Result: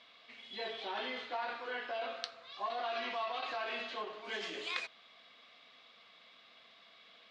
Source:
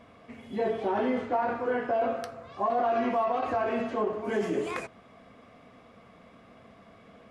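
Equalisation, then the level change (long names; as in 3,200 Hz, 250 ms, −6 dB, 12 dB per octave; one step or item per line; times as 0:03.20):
resonant band-pass 3,900 Hz, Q 3.6
high-frequency loss of the air 69 metres
+14.0 dB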